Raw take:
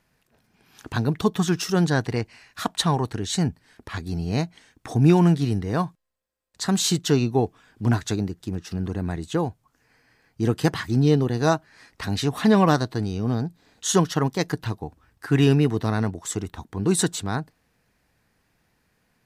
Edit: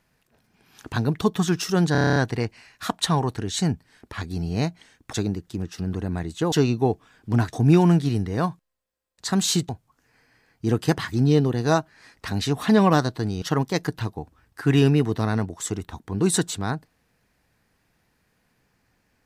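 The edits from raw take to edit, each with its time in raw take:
0:01.92: stutter 0.03 s, 9 plays
0:04.89–0:07.05: swap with 0:08.06–0:09.45
0:13.18–0:14.07: remove

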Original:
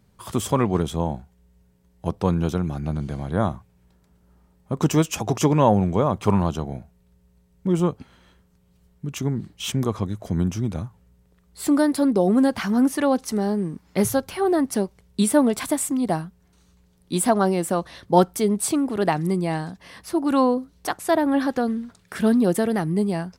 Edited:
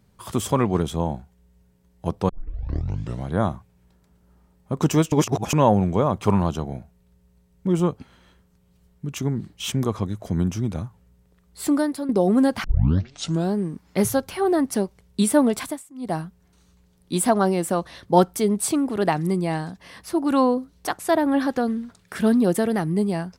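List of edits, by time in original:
0:02.29: tape start 0.98 s
0:05.12–0:05.53: reverse
0:11.64–0:12.09: fade out, to −12 dB
0:12.64: tape start 0.90 s
0:15.57–0:16.20: duck −22 dB, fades 0.26 s

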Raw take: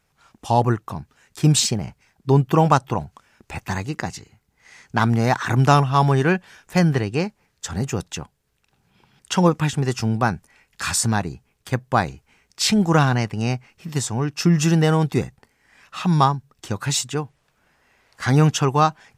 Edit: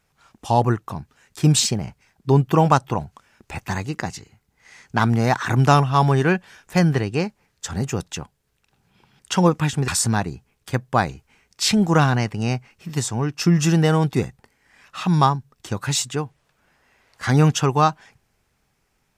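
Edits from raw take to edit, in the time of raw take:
0:09.88–0:10.87: remove

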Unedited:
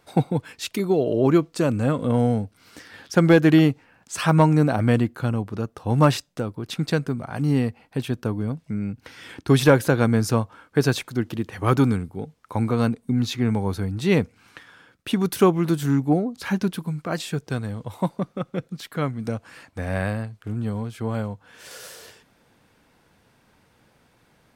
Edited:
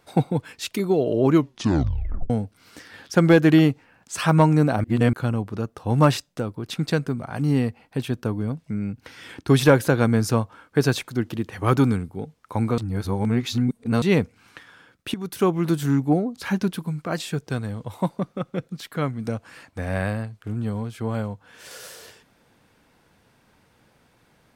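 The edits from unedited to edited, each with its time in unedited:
0:01.32: tape stop 0.98 s
0:04.84–0:05.13: reverse
0:12.78–0:14.02: reverse
0:15.14–0:15.69: fade in, from −13 dB

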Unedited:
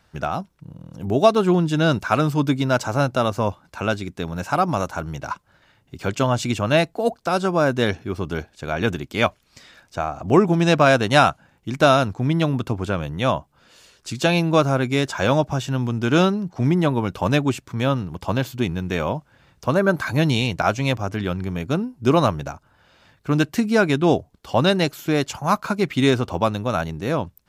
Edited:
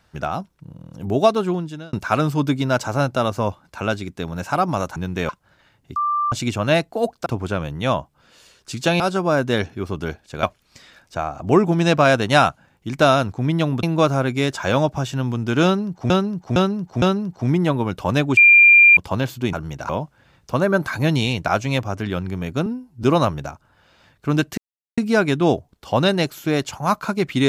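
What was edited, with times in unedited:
0:01.21–0:01.93: fade out
0:04.96–0:05.32: swap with 0:18.70–0:19.03
0:05.99–0:06.35: beep over 1,180 Hz −17.5 dBFS
0:08.72–0:09.24: remove
0:12.64–0:14.38: move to 0:07.29
0:16.19–0:16.65: repeat, 4 plays
0:17.54–0:18.14: beep over 2,390 Hz −6.5 dBFS
0:21.80–0:22.05: time-stretch 1.5×
0:23.59: splice in silence 0.40 s

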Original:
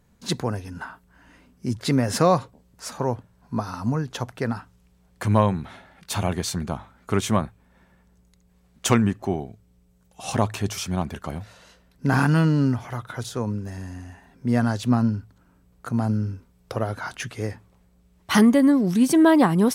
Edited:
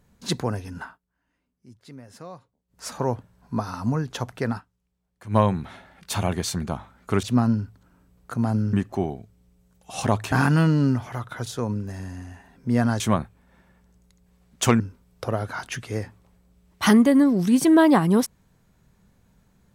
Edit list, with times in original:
0:00.80–0:02.86: duck −22.5 dB, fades 0.18 s
0:04.57–0:05.36: duck −17.5 dB, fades 0.33 s exponential
0:07.23–0:09.03: swap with 0:14.78–0:16.28
0:10.62–0:12.10: remove

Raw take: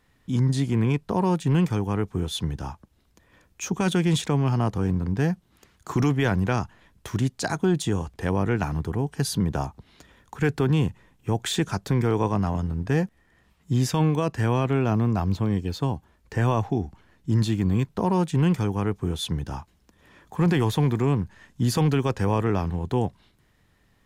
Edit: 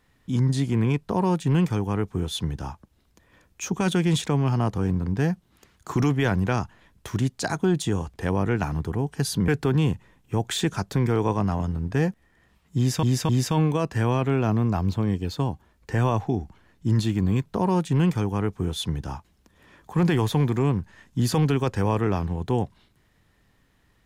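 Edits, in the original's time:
0:09.48–0:10.43: remove
0:13.72–0:13.98: repeat, 3 plays

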